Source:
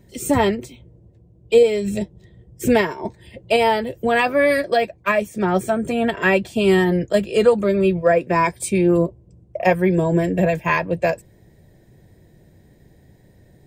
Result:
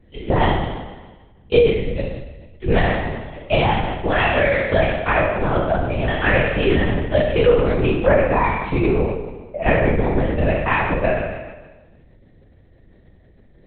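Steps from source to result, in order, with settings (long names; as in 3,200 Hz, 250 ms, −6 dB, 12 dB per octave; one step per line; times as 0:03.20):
peak hold with a decay on every bin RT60 1.26 s
linear-prediction vocoder at 8 kHz whisper
level −2 dB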